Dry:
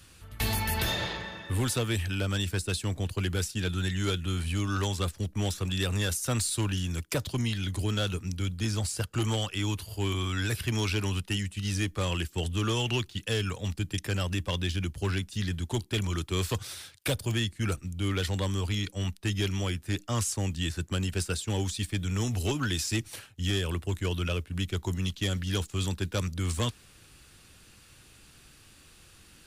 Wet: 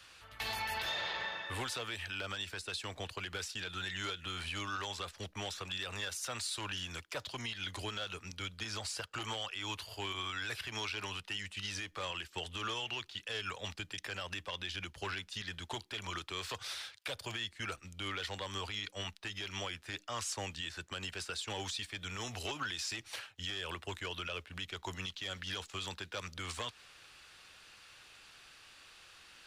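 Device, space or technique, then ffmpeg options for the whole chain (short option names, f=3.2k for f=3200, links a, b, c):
DJ mixer with the lows and highs turned down: -filter_complex "[0:a]acrossover=split=540 5700:gain=0.126 1 0.2[a][b][c];[a][b][c]amix=inputs=3:normalize=0,alimiter=level_in=7dB:limit=-24dB:level=0:latency=1:release=129,volume=-7dB,volume=2.5dB"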